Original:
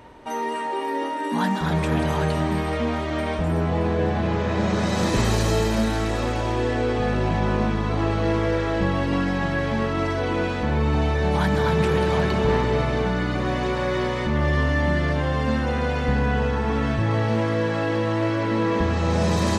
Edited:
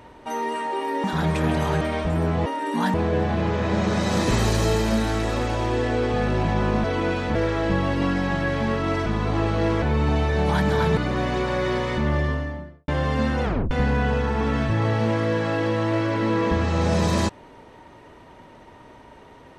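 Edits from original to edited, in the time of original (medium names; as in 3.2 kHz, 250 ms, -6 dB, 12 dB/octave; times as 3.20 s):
1.04–1.52 s: move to 3.80 s
2.29–3.15 s: delete
7.70–8.46 s: swap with 10.17–10.68 s
11.83–13.26 s: delete
14.27–15.17 s: studio fade out
15.73 s: tape stop 0.27 s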